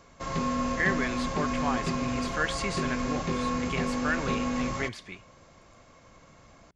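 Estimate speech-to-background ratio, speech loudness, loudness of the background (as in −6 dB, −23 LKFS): −2.5 dB, −33.0 LKFS, −30.5 LKFS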